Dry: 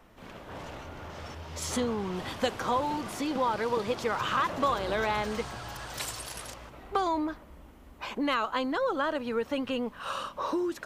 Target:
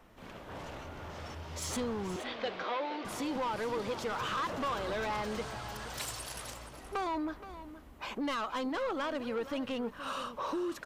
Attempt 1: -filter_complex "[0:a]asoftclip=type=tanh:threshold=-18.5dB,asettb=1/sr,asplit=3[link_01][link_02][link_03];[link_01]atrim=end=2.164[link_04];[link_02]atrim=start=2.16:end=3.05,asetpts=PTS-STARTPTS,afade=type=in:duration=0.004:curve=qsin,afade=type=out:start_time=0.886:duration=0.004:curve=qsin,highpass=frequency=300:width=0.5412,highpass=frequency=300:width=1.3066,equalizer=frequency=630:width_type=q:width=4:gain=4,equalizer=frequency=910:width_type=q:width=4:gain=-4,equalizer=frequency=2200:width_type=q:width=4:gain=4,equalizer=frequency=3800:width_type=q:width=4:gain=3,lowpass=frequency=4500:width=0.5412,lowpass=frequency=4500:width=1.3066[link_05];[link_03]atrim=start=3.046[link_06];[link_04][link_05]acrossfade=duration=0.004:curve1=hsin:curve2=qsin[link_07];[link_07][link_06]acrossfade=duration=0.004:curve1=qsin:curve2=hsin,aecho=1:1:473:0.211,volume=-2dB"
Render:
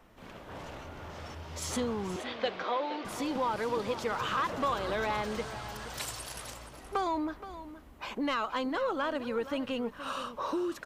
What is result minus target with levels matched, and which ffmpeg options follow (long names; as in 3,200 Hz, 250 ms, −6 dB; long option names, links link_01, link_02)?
soft clipping: distortion −11 dB
-filter_complex "[0:a]asoftclip=type=tanh:threshold=-27.5dB,asettb=1/sr,asplit=3[link_01][link_02][link_03];[link_01]atrim=end=2.164[link_04];[link_02]atrim=start=2.16:end=3.05,asetpts=PTS-STARTPTS,afade=type=in:duration=0.004:curve=qsin,afade=type=out:start_time=0.886:duration=0.004:curve=qsin,highpass=frequency=300:width=0.5412,highpass=frequency=300:width=1.3066,equalizer=frequency=630:width_type=q:width=4:gain=4,equalizer=frequency=910:width_type=q:width=4:gain=-4,equalizer=frequency=2200:width_type=q:width=4:gain=4,equalizer=frequency=3800:width_type=q:width=4:gain=3,lowpass=frequency=4500:width=0.5412,lowpass=frequency=4500:width=1.3066[link_05];[link_03]atrim=start=3.046[link_06];[link_04][link_05]acrossfade=duration=0.004:curve1=hsin:curve2=qsin[link_07];[link_07][link_06]acrossfade=duration=0.004:curve1=qsin:curve2=hsin,aecho=1:1:473:0.211,volume=-2dB"